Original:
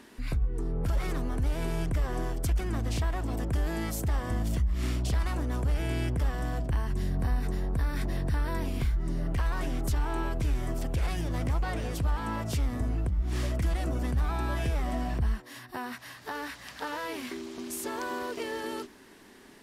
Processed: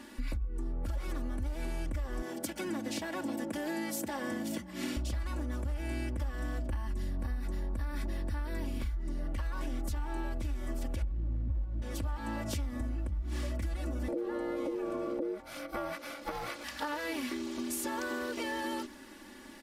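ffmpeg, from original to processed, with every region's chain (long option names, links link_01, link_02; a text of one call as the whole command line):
ffmpeg -i in.wav -filter_complex "[0:a]asettb=1/sr,asplit=3[link_01][link_02][link_03];[link_01]atrim=end=2.224[link_04];[link_02]atrim=start=2.22:end=4.97,asetpts=PTS-STARTPTS,afade=type=in:duration=0.004:curve=qsin,afade=type=out:start_time=2.746:duration=0.004:curve=qsin,highpass=frequency=160:width=0.5412,highpass=frequency=160:width=1.3066,bandreject=frequency=1200:width=8.8[link_05];[link_03]atrim=start=4.966[link_06];[link_04][link_05]acrossfade=duration=0.004:curve1=hsin:curve2=qsin[link_07];[link_07][link_06]acrossfade=duration=0.004:curve1=qsin:curve2=hsin,asettb=1/sr,asplit=3[link_08][link_09][link_10];[link_08]atrim=end=11.024[link_11];[link_09]atrim=start=11.02:end=11.82,asetpts=PTS-STARTPTS,afade=type=in:duration=0.004:curve=qsin,afade=type=out:start_time=0.796:duration=0.004:curve=qsin,aemphasis=mode=reproduction:type=bsi,acrusher=bits=4:mode=log:mix=0:aa=0.000001,bandpass=frequency=120:width_type=q:width=0.79[link_12];[link_10]atrim=start=11.816[link_13];[link_11][link_12]acrossfade=duration=0.004:curve1=hsin:curve2=qsin[link_14];[link_14][link_13]acrossfade=duration=0.004:curve1=qsin:curve2=hsin,asettb=1/sr,asplit=3[link_15][link_16][link_17];[link_15]atrim=end=14.084[link_18];[link_16]atrim=start=14.08:end=16.64,asetpts=PTS-STARTPTS,afade=type=in:duration=0.004:curve=qsin,afade=type=out:start_time=2.556:duration=0.004:curve=qsin,acompressor=threshold=-33dB:ratio=2:attack=3.2:release=140:knee=1:detection=peak,aeval=exprs='val(0)*sin(2*PI*410*n/s)':channel_layout=same,equalizer=frequency=420:width_type=o:width=2.4:gain=8.5[link_19];[link_17]atrim=start=16.636[link_20];[link_18][link_19]acrossfade=duration=0.004:curve1=hsin:curve2=qsin[link_21];[link_21][link_20]acrossfade=duration=0.004:curve1=qsin:curve2=hsin,aecho=1:1:3.5:0.87,acompressor=threshold=-32dB:ratio=6" out.wav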